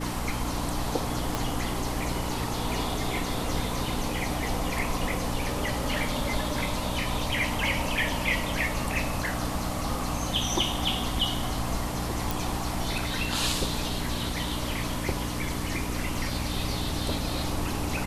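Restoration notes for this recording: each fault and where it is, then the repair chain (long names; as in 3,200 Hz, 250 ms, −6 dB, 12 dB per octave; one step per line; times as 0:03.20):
mains hum 60 Hz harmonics 5 −34 dBFS
0:01.35: click
0:12.31: click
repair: click removal
hum removal 60 Hz, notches 5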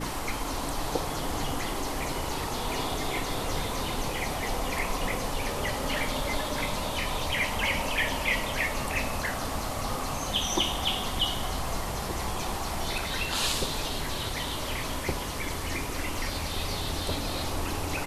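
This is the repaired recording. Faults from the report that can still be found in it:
0:01.35: click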